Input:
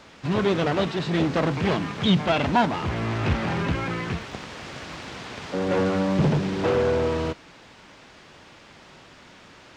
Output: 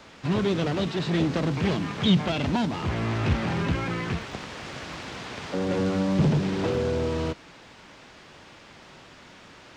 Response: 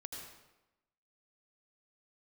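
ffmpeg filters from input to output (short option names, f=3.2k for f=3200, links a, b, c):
-filter_complex "[0:a]acrossover=split=360|3000[a][b][c];[b]acompressor=threshold=-30dB:ratio=6[d];[a][d][c]amix=inputs=3:normalize=0"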